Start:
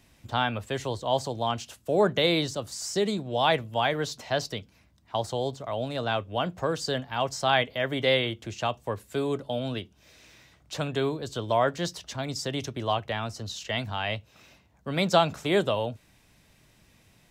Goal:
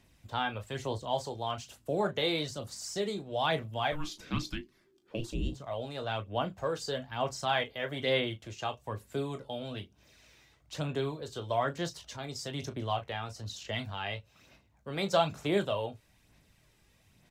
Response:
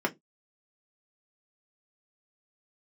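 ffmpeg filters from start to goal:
-filter_complex "[0:a]asettb=1/sr,asplit=3[link_01][link_02][link_03];[link_01]atrim=end=3.924[link_04];[link_02]atrim=start=3.92:end=5.52,asetpts=PTS-STARTPTS,afade=type=in:duration=0.004:curve=qsin,afade=type=out:start_time=1.596:duration=0.004:curve=qsin,afreqshift=-450[link_05];[link_03]atrim=start=5.516[link_06];[link_04][link_05]acrossfade=duration=0.004:curve1=hsin:curve2=qsin[link_07];[link_07][link_06]acrossfade=duration=0.004:curve1=qsin:curve2=hsin,aecho=1:1:20|36:0.335|0.266,aphaser=in_gain=1:out_gain=1:delay=2.5:decay=0.37:speed=1.1:type=sinusoidal,volume=-7.5dB"

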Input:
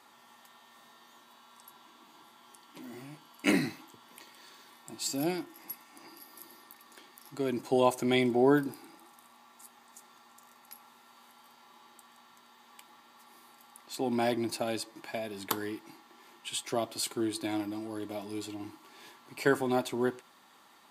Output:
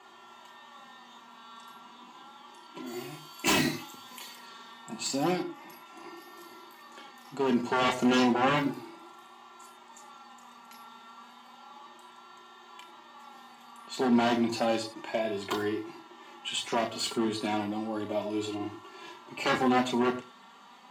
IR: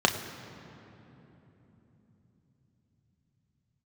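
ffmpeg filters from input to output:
-filter_complex "[0:a]aeval=exprs='0.0531*(abs(mod(val(0)/0.0531+3,4)-2)-1)':channel_layout=same,asettb=1/sr,asplit=3[link_01][link_02][link_03];[link_01]atrim=end=2.864[link_04];[link_02]atrim=start=2.86:end=4.36,asetpts=PTS-STARTPTS,afade=type=in:duration=0.004:curve=qsin,afade=type=out:start_time=1.496:duration=0.004:curve=qsin,aemphasis=mode=production:type=75fm[link_05];[link_03]atrim=start=4.356[link_06];[link_04][link_05]acrossfade=duration=0.004:curve1=hsin:curve2=qsin[link_07];[link_07][link_06]acrossfade=duration=0.004:curve1=qsin:curve2=hsin[link_08];[1:a]atrim=start_sample=2205,afade=type=out:start_time=0.16:duration=0.01,atrim=end_sample=7497[link_09];[link_08][link_09]afir=irnorm=-1:irlink=0,flanger=delay=2.8:depth=1.6:regen=33:speed=0.32:shape=sinusoidal,asettb=1/sr,asplit=3[link_10][link_11][link_12];[link_10]atrim=end=5.424[link_13];[link_11]atrim=start=5.42:end=5.86,asetpts=PTS-STARTPTS,afade=type=in:duration=0.004:curve=qsin,afade=type=out:start_time=0.436:duration=0.004:curve=qsin,bass=frequency=250:gain=0,treble=frequency=4000:gain=-5[link_14];[link_12]atrim=start=5.856[link_15];[link_13][link_14]acrossfade=duration=0.004:curve1=hsin:curve2=qsin[link_16];[link_16][link_15]acrossfade=duration=0.004:curve1=qsin:curve2=hsin,volume=-4.5dB"

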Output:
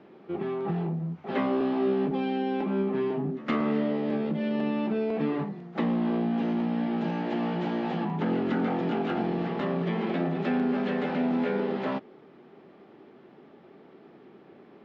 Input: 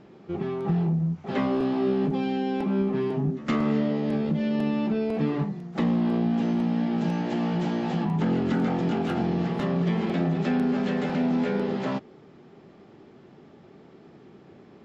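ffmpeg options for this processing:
ffmpeg -i in.wav -filter_complex "[0:a]acrossover=split=200 4200:gain=0.224 1 0.0794[link_01][link_02][link_03];[link_01][link_02][link_03]amix=inputs=3:normalize=0" out.wav

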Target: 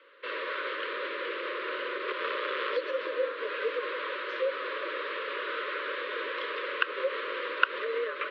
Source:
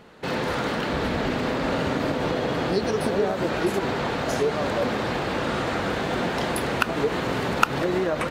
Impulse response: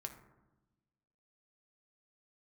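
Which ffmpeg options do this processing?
-filter_complex "[0:a]asettb=1/sr,asplit=3[link_01][link_02][link_03];[link_01]atrim=end=2.084[link_04];[link_02]atrim=start=2.08:end=2.77,asetpts=PTS-STARTPTS,afade=type=in:duration=0.004:curve=qsin,afade=type=out:start_time=0.686:duration=0.004:curve=qsin,aeval=exprs='0.266*(cos(1*acos(clip(val(0)/0.266,-1,1)))-cos(1*PI/2))+0.106*(cos(4*acos(clip(val(0)/0.266,-1,1)))-cos(4*PI/2))':channel_layout=same[link_05];[link_03]atrim=start=2.766[link_06];[link_04][link_05]acrossfade=duration=0.004:curve1=hsin:curve2=qsin[link_07];[link_07][link_06]acrossfade=duration=0.004:curve1=qsin:curve2=hsin,asuperstop=centerf=660:order=8:qfactor=1.4,highpass=frequency=350:width_type=q:width=0.5412,highpass=frequency=350:width_type=q:width=1.307,lowpass=frequency=3500:width_type=q:width=0.5176,lowpass=frequency=3500:width_type=q:width=0.7071,lowpass=frequency=3500:width_type=q:width=1.932,afreqshift=97,volume=-4dB"

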